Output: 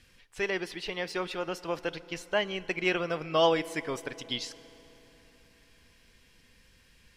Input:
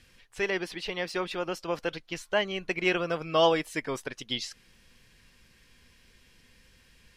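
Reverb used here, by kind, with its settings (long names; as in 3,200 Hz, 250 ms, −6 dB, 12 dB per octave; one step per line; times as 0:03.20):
feedback delay network reverb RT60 3.9 s, high-frequency decay 0.65×, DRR 16.5 dB
level −1.5 dB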